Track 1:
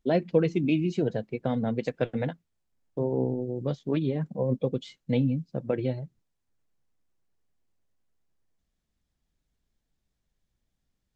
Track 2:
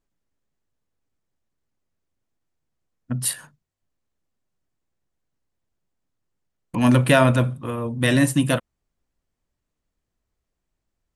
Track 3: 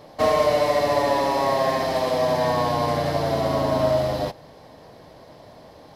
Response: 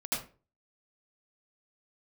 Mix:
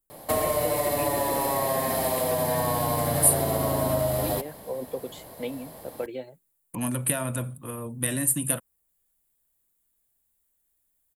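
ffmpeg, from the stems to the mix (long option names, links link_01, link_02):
-filter_complex "[0:a]highpass=410,adelay=300,volume=-1.5dB[link_01];[1:a]acompressor=threshold=-17dB:ratio=6,volume=-8.5dB[link_02];[2:a]adelay=100,volume=0dB[link_03];[link_01][link_02][link_03]amix=inputs=3:normalize=0,acrossover=split=170[link_04][link_05];[link_05]acompressor=threshold=-25dB:ratio=3[link_06];[link_04][link_06]amix=inputs=2:normalize=0,aexciter=amount=13.2:drive=3.8:freq=8100"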